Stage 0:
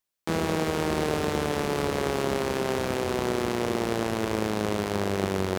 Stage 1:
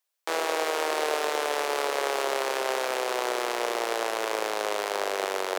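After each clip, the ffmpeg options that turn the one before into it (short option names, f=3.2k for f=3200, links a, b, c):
-af "highpass=f=480:w=0.5412,highpass=f=480:w=1.3066,volume=3dB"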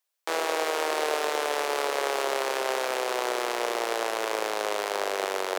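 -af anull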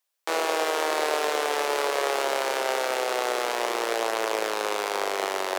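-af "flanger=delay=8.6:depth=1.1:regen=-60:speed=0.44:shape=triangular,volume=6dB"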